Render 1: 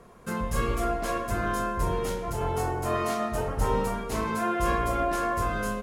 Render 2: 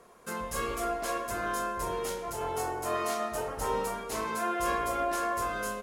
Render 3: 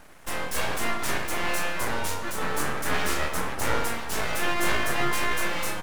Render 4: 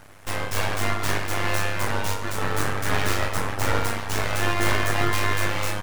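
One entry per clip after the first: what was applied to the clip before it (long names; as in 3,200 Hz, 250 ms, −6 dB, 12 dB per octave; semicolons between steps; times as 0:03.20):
bass and treble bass −12 dB, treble +4 dB; level −2.5 dB
full-wave rectification; level +8 dB
stylus tracing distortion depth 0.088 ms; amplitude modulation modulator 100 Hz, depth 50%; level +5 dB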